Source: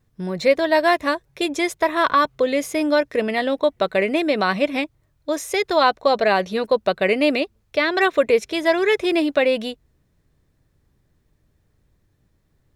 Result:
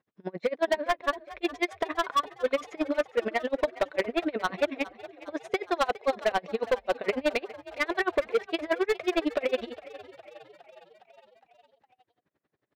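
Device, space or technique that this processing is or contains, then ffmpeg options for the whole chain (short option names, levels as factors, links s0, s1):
helicopter radio: -filter_complex "[0:a]asettb=1/sr,asplit=3[s0][s1][s2];[s0]atrim=end=0.764[s3];[s1]atrim=start=0.76:end=1.42,asetpts=PTS-STARTPTS,afade=t=in:d=0.004:c=qsin,afade=t=out:st=0.656:d=0.004:c=qsin,lowpass=3400[s4];[s2]atrim=start=1.416[s5];[s3][s4]acrossfade=d=0.004:c1=hsin:c2=qsin[s6];[s6][s5]acrossfade=d=0.004:c1=qsin:c2=hsin,highpass=310,lowpass=2700,aeval=exprs='val(0)*pow(10,-35*(0.5-0.5*cos(2*PI*11*n/s))/20)':c=same,asoftclip=type=hard:threshold=0.0944,asplit=7[s7][s8][s9][s10][s11][s12][s13];[s8]adelay=411,afreqshift=40,volume=0.126[s14];[s9]adelay=822,afreqshift=80,volume=0.0794[s15];[s10]adelay=1233,afreqshift=120,volume=0.0501[s16];[s11]adelay=1644,afreqshift=160,volume=0.0316[s17];[s12]adelay=2055,afreqshift=200,volume=0.0197[s18];[s13]adelay=2466,afreqshift=240,volume=0.0124[s19];[s7][s14][s15][s16][s17][s18][s19]amix=inputs=7:normalize=0,volume=1.19"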